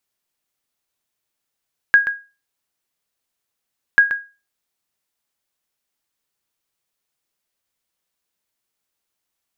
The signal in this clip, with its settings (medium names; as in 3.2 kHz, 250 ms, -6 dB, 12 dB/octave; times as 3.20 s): sonar ping 1.64 kHz, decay 0.30 s, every 2.04 s, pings 2, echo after 0.13 s, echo -11 dB -3.5 dBFS